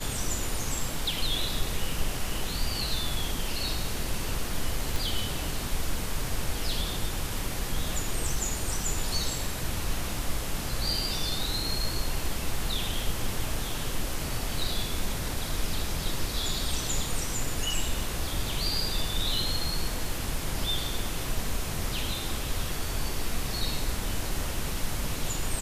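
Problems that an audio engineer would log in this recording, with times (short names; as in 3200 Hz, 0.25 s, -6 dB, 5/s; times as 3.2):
4.96 pop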